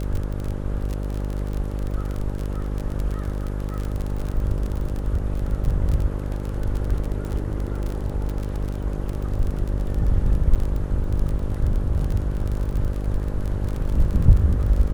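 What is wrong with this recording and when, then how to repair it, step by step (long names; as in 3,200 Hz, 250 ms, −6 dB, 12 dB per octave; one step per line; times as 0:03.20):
mains buzz 50 Hz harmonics 12 −27 dBFS
surface crackle 28 per second −25 dBFS
0:10.55–0:10.56: drop-out 6.9 ms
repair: click removal
hum removal 50 Hz, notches 12
repair the gap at 0:10.55, 6.9 ms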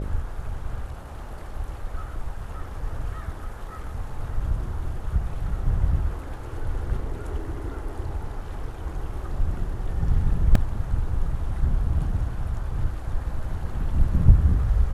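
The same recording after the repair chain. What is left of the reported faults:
none of them is left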